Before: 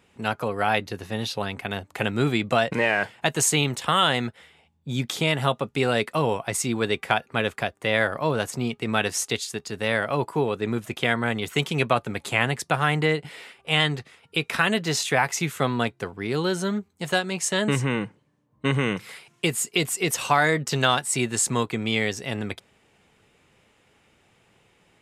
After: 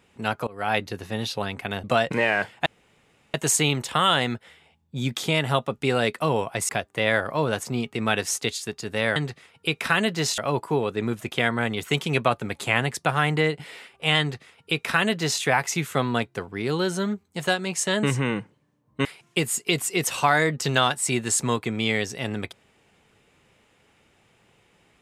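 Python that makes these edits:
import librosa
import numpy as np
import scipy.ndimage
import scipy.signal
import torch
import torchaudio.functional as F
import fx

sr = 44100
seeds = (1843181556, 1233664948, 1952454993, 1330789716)

y = fx.edit(x, sr, fx.fade_in_from(start_s=0.47, length_s=0.3, floor_db=-24.0),
    fx.cut(start_s=1.84, length_s=0.61),
    fx.insert_room_tone(at_s=3.27, length_s=0.68),
    fx.cut(start_s=6.62, length_s=0.94),
    fx.duplicate(start_s=13.85, length_s=1.22, to_s=10.03),
    fx.cut(start_s=18.7, length_s=0.42), tone=tone)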